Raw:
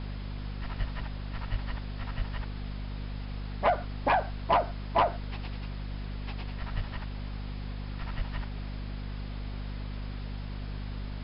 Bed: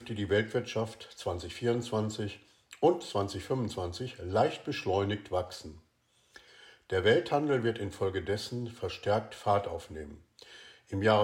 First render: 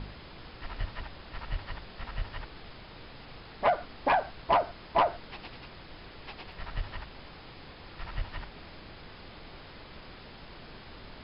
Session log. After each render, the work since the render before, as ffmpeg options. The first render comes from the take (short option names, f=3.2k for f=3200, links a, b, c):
-af "bandreject=f=50:t=h:w=4,bandreject=f=100:t=h:w=4,bandreject=f=150:t=h:w=4,bandreject=f=200:t=h:w=4,bandreject=f=250:t=h:w=4"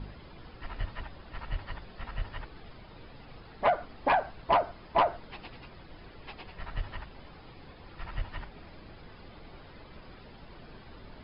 -af "afftdn=nr=9:nf=-49"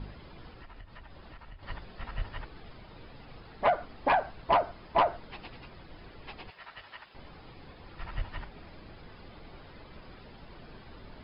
-filter_complex "[0:a]asettb=1/sr,asplit=3[a][b][c];[a]atrim=end=0.484[d];[b]atrim=start=0.48:end=1.63,asetpts=PTS-STARTPTS,afade=t=in:d=0.004:c=qsin,afade=t=out:st=1.146:d=0.004:c=qsin,acompressor=threshold=-44dB:ratio=8:attack=3.2:release=140:knee=1:detection=peak[e];[c]atrim=start=1.626[f];[d][e]acrossfade=d=0.004:c1=hsin:c2=qsin[g];[g][f]acrossfade=d=0.004:c1=qsin:c2=hsin,asettb=1/sr,asplit=3[h][i][j];[h]atrim=end=6.504[k];[i]atrim=start=6.5:end=7.15,asetpts=PTS-STARTPTS,afade=t=in:d=0.004:c=qsin,afade=t=out:st=0.646:d=0.004:c=qsin,highpass=f=1.2k:p=1[l];[j]atrim=start=7.146[m];[k][l]acrossfade=d=0.004:c1=hsin:c2=qsin[n];[n][m]acrossfade=d=0.004:c1=qsin:c2=hsin"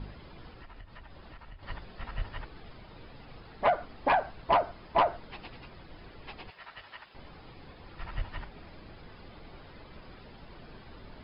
-af anull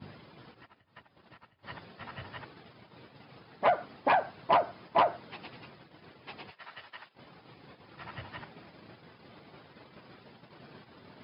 -af "highpass=f=110:w=0.5412,highpass=f=110:w=1.3066,agate=range=-13dB:threshold=-51dB:ratio=16:detection=peak"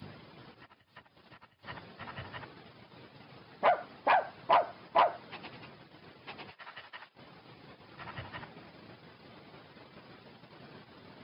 -filter_complex "[0:a]acrossover=split=500|2500[a][b][c];[a]alimiter=level_in=9.5dB:limit=-24dB:level=0:latency=1:release=416,volume=-9.5dB[d];[c]acompressor=mode=upward:threshold=-60dB:ratio=2.5[e];[d][b][e]amix=inputs=3:normalize=0"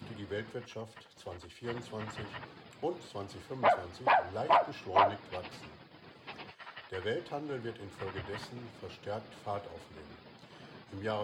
-filter_complex "[1:a]volume=-10.5dB[a];[0:a][a]amix=inputs=2:normalize=0"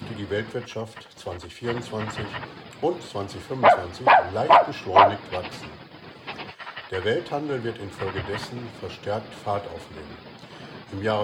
-af "volume=11dB"